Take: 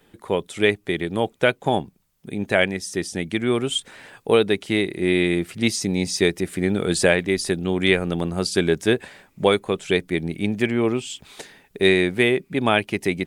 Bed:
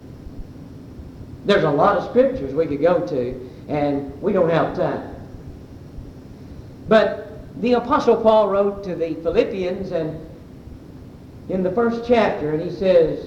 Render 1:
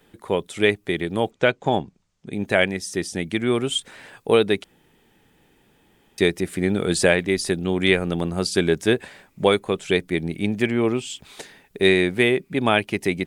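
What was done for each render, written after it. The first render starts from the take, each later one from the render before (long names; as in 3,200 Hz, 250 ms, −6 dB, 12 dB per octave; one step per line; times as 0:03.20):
0:01.31–0:02.33: Chebyshev low-pass filter 7,000 Hz, order 3
0:04.64–0:06.18: fill with room tone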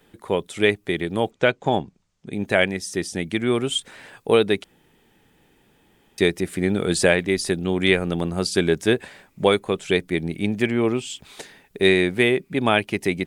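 no processing that can be heard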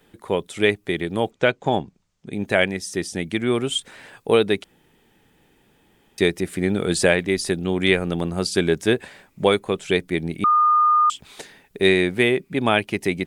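0:10.44–0:11.10: beep over 1,220 Hz −13 dBFS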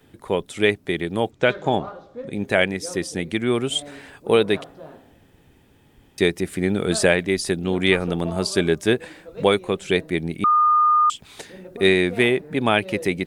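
mix in bed −20 dB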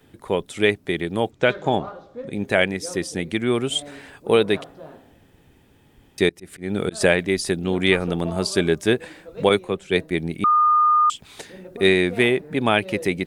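0:06.29–0:07.01: volume swells 221 ms
0:09.49–0:10.11: multiband upward and downward expander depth 100%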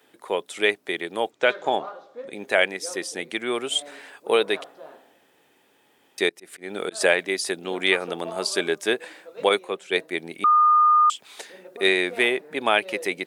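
high-pass filter 470 Hz 12 dB per octave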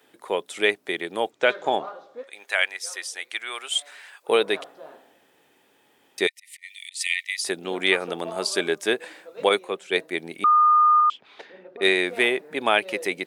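0:02.23–0:04.29: high-pass filter 1,100 Hz
0:06.27–0:07.44: linear-phase brick-wall high-pass 1,800 Hz
0:11.00–0:11.82: high-frequency loss of the air 280 metres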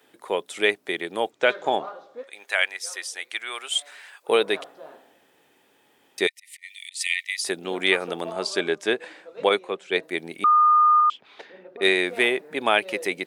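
0:08.32–0:10.03: high-frequency loss of the air 57 metres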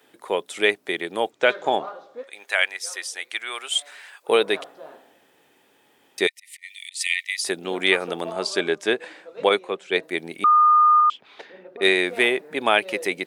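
level +1.5 dB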